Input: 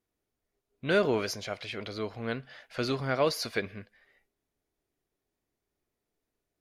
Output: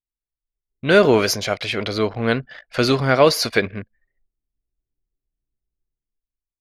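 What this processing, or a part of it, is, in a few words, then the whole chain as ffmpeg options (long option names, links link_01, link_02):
voice memo with heavy noise removal: -filter_complex "[0:a]asettb=1/sr,asplit=3[link_01][link_02][link_03];[link_01]atrim=end=1.034[link_04];[link_02]atrim=start=1.03:end=3.22,asetpts=PTS-STARTPTS,afade=type=in:duration=0.004:curve=qsin,afade=type=out:start_time=2.186:duration=0.004:curve=qsin,highshelf=frequency=9700:gain=5.5[link_05];[link_03]atrim=start=3.216[link_06];[link_04][link_05]acrossfade=duration=0.004:curve1=hsin:curve2=qsin[link_07];[link_07][link_06]acrossfade=duration=0.004:curve1=qsin:curve2=hsin,anlmdn=0.0158,dynaudnorm=framelen=120:gausssize=13:maxgain=14.5dB,volume=1dB"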